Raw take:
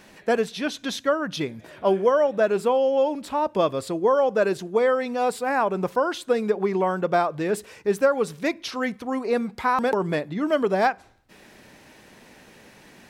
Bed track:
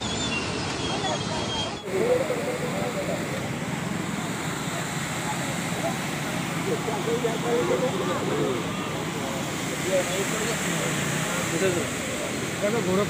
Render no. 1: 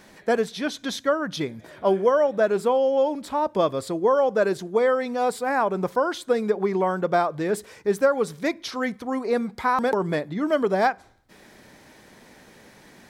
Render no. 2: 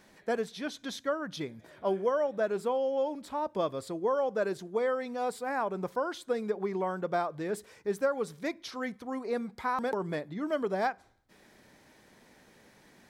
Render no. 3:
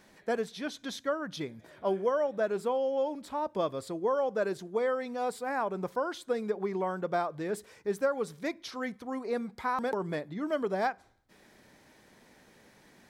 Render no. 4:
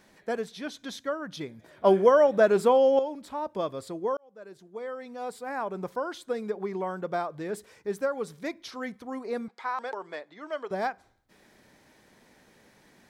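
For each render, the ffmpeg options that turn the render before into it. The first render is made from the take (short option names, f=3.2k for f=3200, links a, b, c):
-af "equalizer=f=2.7k:w=7.2:g=-8"
-af "volume=-9dB"
-af anull
-filter_complex "[0:a]asettb=1/sr,asplit=3[a][b][c];[a]atrim=end=9.484[d];[b]atrim=start=9.48:end=10.71,asetpts=PTS-STARTPTS,afade=t=in:d=0.004:c=qsin,afade=t=out:st=1.226:d=0.004:c=qsin,highpass=580,lowpass=6.3k[e];[c]atrim=start=10.706[f];[d][e]acrossfade=d=0.004:c1=hsin:c2=qsin[g];[g][f]acrossfade=d=0.004:c1=qsin:c2=hsin,asplit=4[h][i][j][k];[h]atrim=end=1.842[l];[i]atrim=start=1.838:end=2.992,asetpts=PTS-STARTPTS,volume=9.5dB[m];[j]atrim=start=2.988:end=4.17,asetpts=PTS-STARTPTS,afade=t=out:st=1.178:d=0.004:c=hsin[n];[k]atrim=start=4.17,asetpts=PTS-STARTPTS,afade=t=in:d=1.59[o];[l][m]acrossfade=d=0.004:c1=hsin:c2=hsin[p];[n][o]concat=n=2:v=0:a=1[q];[p][q]acrossfade=d=0.004:c1=hsin:c2=hsin"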